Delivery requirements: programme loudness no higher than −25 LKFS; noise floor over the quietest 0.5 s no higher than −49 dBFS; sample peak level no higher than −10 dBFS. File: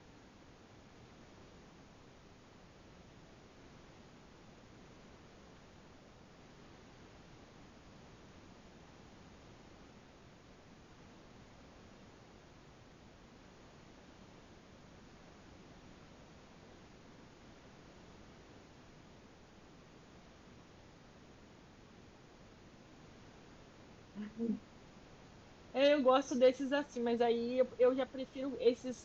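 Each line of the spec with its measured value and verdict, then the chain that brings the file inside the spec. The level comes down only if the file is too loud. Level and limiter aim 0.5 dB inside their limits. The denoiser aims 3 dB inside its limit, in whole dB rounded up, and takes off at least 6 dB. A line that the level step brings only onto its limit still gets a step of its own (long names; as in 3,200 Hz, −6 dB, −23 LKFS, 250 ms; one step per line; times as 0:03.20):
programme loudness −34.0 LKFS: in spec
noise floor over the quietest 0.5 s −60 dBFS: in spec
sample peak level −18.5 dBFS: in spec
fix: no processing needed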